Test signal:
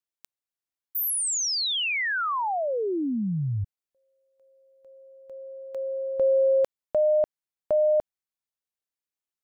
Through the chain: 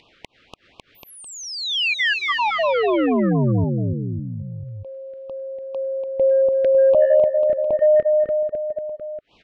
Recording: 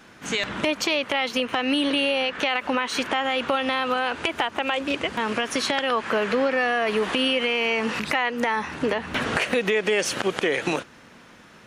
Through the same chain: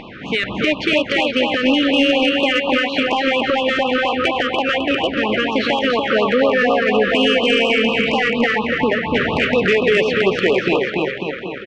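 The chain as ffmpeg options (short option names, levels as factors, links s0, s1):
-filter_complex "[0:a]lowpass=f=3300:w=0.5412,lowpass=f=3300:w=1.3066,asplit=2[s0][s1];[s1]aecho=0:1:290|551|785.9|997.3|1188:0.631|0.398|0.251|0.158|0.1[s2];[s0][s2]amix=inputs=2:normalize=0,asoftclip=type=tanh:threshold=0.224,acompressor=mode=upward:threshold=0.0224:ratio=2.5:attack=3.3:release=82:knee=2.83:detection=peak,afftfilt=real='re*(1-between(b*sr/1024,790*pow(1800/790,0.5+0.5*sin(2*PI*4.2*pts/sr))/1.41,790*pow(1800/790,0.5+0.5*sin(2*PI*4.2*pts/sr))*1.41))':imag='im*(1-between(b*sr/1024,790*pow(1800/790,0.5+0.5*sin(2*PI*4.2*pts/sr))/1.41,790*pow(1800/790,0.5+0.5*sin(2*PI*4.2*pts/sr))*1.41))':win_size=1024:overlap=0.75,volume=2.37"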